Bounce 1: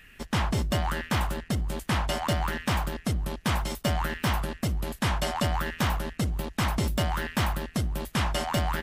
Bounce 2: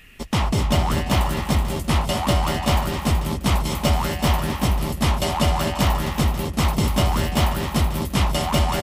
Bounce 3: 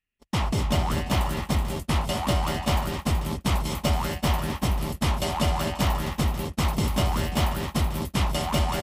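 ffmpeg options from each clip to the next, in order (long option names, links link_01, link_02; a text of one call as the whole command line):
ffmpeg -i in.wav -af "equalizer=frequency=1600:width=4.1:gain=-10,acontrast=48,aecho=1:1:216|235|259|377|403|537:0.237|0.119|0.299|0.531|0.237|0.211" out.wav
ffmpeg -i in.wav -af "agate=range=-35dB:threshold=-25dB:ratio=16:detection=peak,volume=-4.5dB" out.wav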